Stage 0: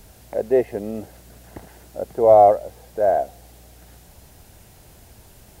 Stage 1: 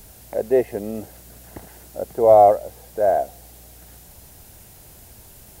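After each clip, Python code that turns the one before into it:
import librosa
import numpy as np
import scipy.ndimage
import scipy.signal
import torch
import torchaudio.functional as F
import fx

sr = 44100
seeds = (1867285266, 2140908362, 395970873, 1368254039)

y = fx.high_shelf(x, sr, hz=7500.0, db=9.0)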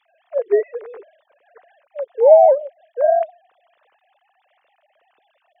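y = fx.sine_speech(x, sr)
y = y * librosa.db_to_amplitude(2.0)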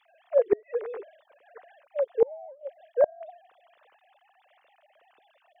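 y = fx.gate_flip(x, sr, shuts_db=-9.0, range_db=-33)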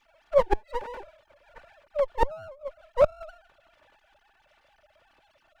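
y = fx.lower_of_two(x, sr, delay_ms=3.4)
y = y * librosa.db_to_amplitude(2.0)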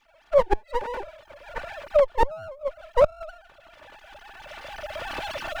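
y = fx.recorder_agc(x, sr, target_db=-13.0, rise_db_per_s=14.0, max_gain_db=30)
y = y * librosa.db_to_amplitude(1.5)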